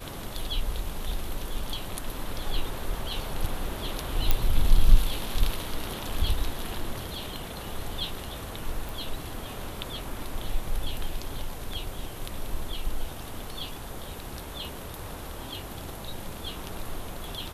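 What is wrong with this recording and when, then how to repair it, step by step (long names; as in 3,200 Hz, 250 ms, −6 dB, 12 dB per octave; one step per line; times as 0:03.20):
0:04.31: click −7 dBFS
0:08.89: click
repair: click removal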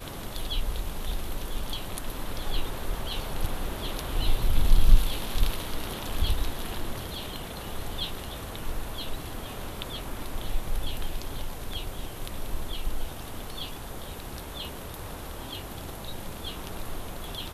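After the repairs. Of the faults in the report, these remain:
0:04.31: click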